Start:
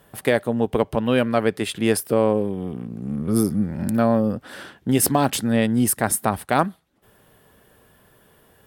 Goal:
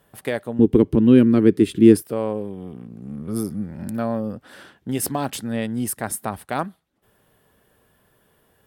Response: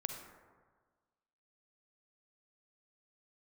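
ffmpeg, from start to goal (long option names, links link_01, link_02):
-filter_complex "[0:a]asettb=1/sr,asplit=3[link_01][link_02][link_03];[link_01]atrim=end=0.594[link_04];[link_02]atrim=start=0.59:end=2.02,asetpts=PTS-STARTPTS,afade=type=in:duration=0.004:curve=qsin,afade=type=out:start_time=1.426:duration=0.004:curve=qsin,lowshelf=frequency=470:width_type=q:width=3:gain=11.5[link_05];[link_03]atrim=start=2.016[link_06];[link_04][link_05]acrossfade=duration=0.004:curve1=hsin:curve2=qsin[link_07];[link_07][link_06]acrossfade=duration=0.004:curve1=qsin:curve2=hsin,volume=-6dB"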